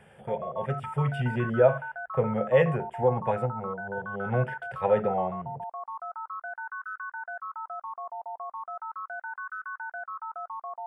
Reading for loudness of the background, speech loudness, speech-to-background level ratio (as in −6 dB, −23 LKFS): −37.5 LKFS, −28.0 LKFS, 9.5 dB